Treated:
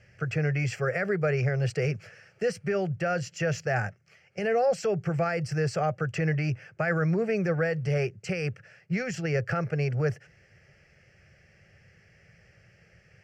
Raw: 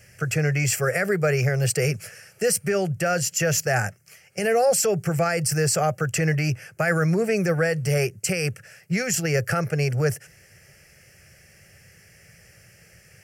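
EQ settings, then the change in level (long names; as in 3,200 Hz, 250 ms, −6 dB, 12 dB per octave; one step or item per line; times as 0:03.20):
high-frequency loss of the air 190 metres
−4.0 dB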